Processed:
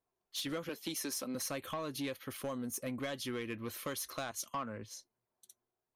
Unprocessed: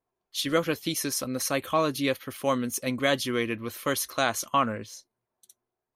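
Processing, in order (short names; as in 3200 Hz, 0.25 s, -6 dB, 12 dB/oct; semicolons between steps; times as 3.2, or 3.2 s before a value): 0.69–1.35 HPF 180 Hz 24 dB/oct; 2.42–3.01 bell 1600 Hz -> 5600 Hz -9 dB 1.2 oct; compressor 12:1, threshold -29 dBFS, peak gain reduction 11 dB; soft clip -26.5 dBFS, distortion -16 dB; 4.31–4.91 three-band expander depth 70%; gain -4 dB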